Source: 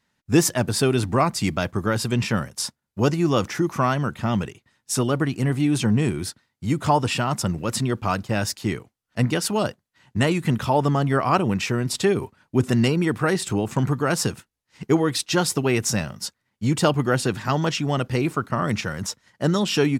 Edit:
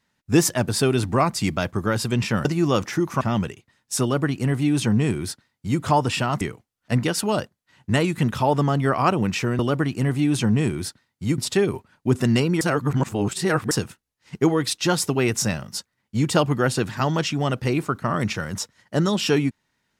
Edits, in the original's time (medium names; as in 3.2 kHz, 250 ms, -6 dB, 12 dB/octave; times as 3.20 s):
2.45–3.07 s: delete
3.83–4.19 s: delete
5.00–6.79 s: copy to 11.86 s
7.39–8.68 s: delete
13.09–14.19 s: reverse